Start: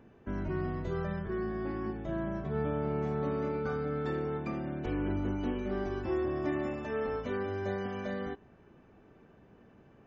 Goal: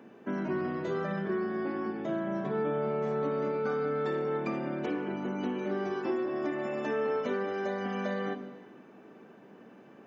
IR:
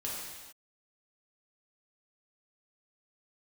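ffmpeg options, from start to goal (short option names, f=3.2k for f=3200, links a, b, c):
-filter_complex "[0:a]highpass=f=190:w=0.5412,highpass=f=190:w=1.3066,acompressor=threshold=-35dB:ratio=6,asplit=2[a][b];[1:a]atrim=start_sample=2205,lowshelf=f=150:g=10,adelay=56[c];[b][c]afir=irnorm=-1:irlink=0,volume=-12.5dB[d];[a][d]amix=inputs=2:normalize=0,volume=6.5dB"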